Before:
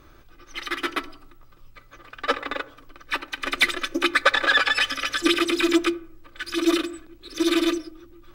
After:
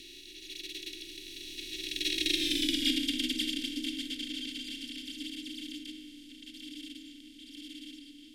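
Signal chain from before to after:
compressor on every frequency bin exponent 0.2
source passing by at 0:02.60, 36 m/s, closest 11 metres
elliptic band-stop filter 270–3,100 Hz, stop band 80 dB
level −4.5 dB

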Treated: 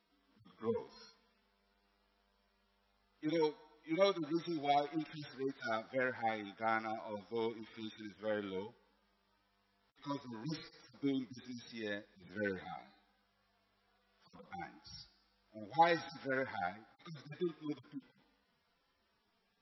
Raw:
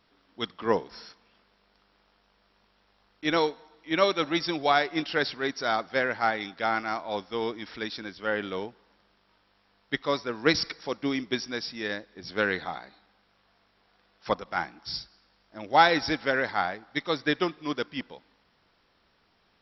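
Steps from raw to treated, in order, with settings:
harmonic-percussive split with one part muted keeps harmonic
level −7 dB

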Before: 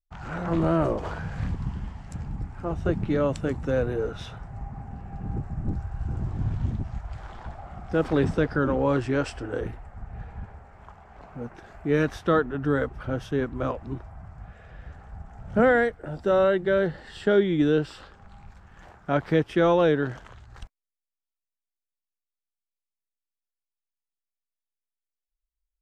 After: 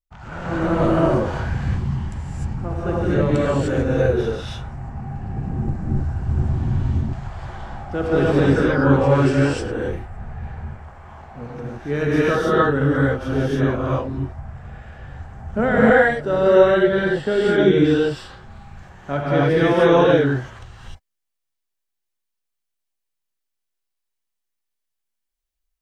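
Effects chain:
reverb whose tail is shaped and stops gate 330 ms rising, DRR −8 dB
level −1 dB

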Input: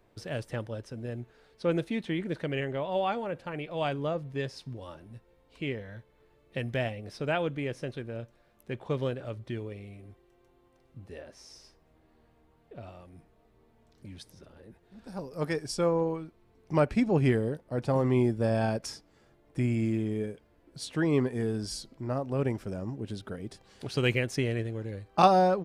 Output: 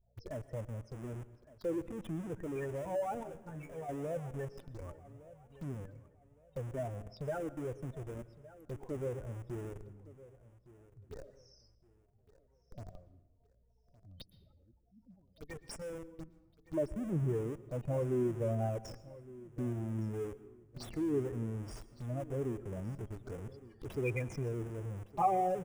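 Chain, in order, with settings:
0:15.14–0:16.19: first-order pre-emphasis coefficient 0.8
gate on every frequency bin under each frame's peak −10 dB strong
flat-topped bell 2,600 Hz +8 dB 1.1 octaves
flanger 1.4 Hz, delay 0.9 ms, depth 2.2 ms, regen −3%
in parallel at −5.5 dB: comparator with hysteresis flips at −42.5 dBFS
on the sum: mains hum 60 Hz, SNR 35 dB
phaser swept by the level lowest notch 270 Hz, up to 4,300 Hz, full sweep at −36 dBFS
0:03.23–0:03.89: tuned comb filter 79 Hz, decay 0.16 s, harmonics all, mix 100%
repeating echo 1,163 ms, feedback 31%, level −18.5 dB
on a send at −16.5 dB: convolution reverb RT60 0.95 s, pre-delay 108 ms
on the sum: level −5.5 dB

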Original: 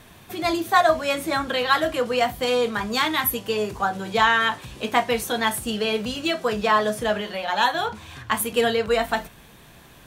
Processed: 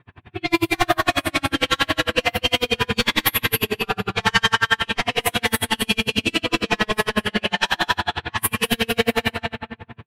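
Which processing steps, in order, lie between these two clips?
graphic EQ with 15 bands 100 Hz +11 dB, 630 Hz −9 dB, 2,500 Hz +5 dB, 6,300 Hz −9 dB
repeating echo 237 ms, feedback 31%, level −4.5 dB
flanger 0.32 Hz, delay 7.5 ms, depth 3.9 ms, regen −49%
high-pass filter 79 Hz
in parallel at −1.5 dB: brickwall limiter −17 dBFS, peak gain reduction 8.5 dB
on the sum: flanger 1.2 Hz, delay 4.7 ms, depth 9.1 ms, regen −89%
soft clipping −23 dBFS, distortion −12 dB
high-shelf EQ 2,500 Hz +8 dB
rectangular room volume 250 cubic metres, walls mixed, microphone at 4.5 metres
low-pass that shuts in the quiet parts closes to 1,200 Hz, open at −10.5 dBFS
tremolo with a sine in dB 11 Hz, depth 39 dB

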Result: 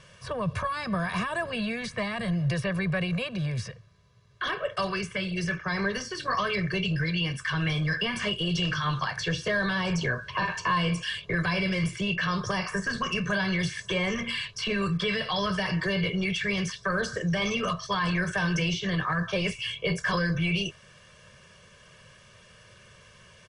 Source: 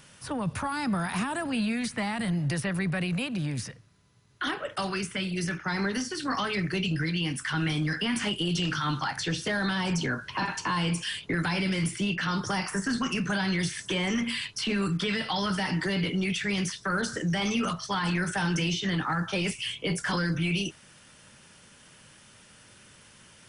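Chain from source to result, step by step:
high-frequency loss of the air 87 metres
comb filter 1.8 ms, depth 92%

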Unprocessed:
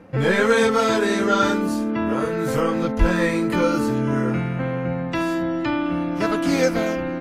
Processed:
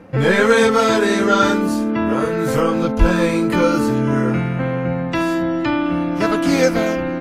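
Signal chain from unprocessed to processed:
0:02.62–0:03.50: notch filter 1,900 Hz, Q 5.9
level +4 dB

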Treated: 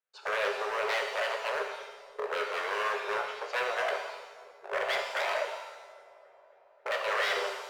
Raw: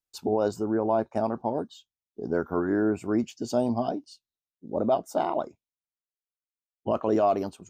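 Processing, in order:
camcorder AGC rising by 13 dB per second
low-pass filter 2,200 Hz 12 dB per octave
0:05.35–0:06.91: downward compressor, threshold −27 dBFS, peak gain reduction 8 dB
wave folding −27.5 dBFS
Chebyshev high-pass with heavy ripple 400 Hz, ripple 6 dB
soft clipping −26.5 dBFS, distortion −25 dB
on a send: delay with a low-pass on its return 271 ms, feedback 72%, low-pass 940 Hz, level −19 dB
on the sum: reverb with rising layers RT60 1 s, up +7 semitones, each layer −8 dB, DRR 2.5 dB
level +5.5 dB

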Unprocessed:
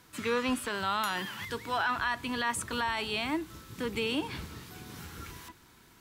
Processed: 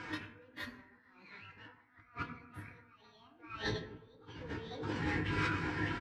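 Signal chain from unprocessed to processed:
tilt shelving filter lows +3 dB, about 1,300 Hz
single-tap delay 610 ms −13 dB
mid-hump overdrive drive 16 dB, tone 3,000 Hz, clips at −25.5 dBFS
compressor whose output falls as the input rises −43 dBFS, ratio −0.5
low-pass filter 5,200 Hz 12 dB per octave
convolution reverb RT60 1.2 s, pre-delay 5 ms, DRR 1 dB
formants moved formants +5 semitones
low-shelf EQ 230 Hz +4 dB
every bin expanded away from the loudest bin 1.5 to 1
level −1 dB

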